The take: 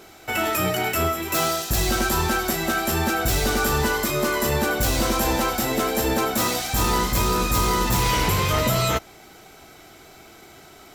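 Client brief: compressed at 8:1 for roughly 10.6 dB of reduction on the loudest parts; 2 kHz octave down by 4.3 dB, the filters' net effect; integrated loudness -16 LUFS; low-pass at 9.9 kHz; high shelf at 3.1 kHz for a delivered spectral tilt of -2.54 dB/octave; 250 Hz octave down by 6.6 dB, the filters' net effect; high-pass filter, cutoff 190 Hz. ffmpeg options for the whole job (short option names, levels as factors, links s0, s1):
-af "highpass=190,lowpass=9900,equalizer=f=250:t=o:g=-7.5,equalizer=f=2000:t=o:g=-7,highshelf=f=3100:g=3,acompressor=threshold=0.0251:ratio=8,volume=7.94"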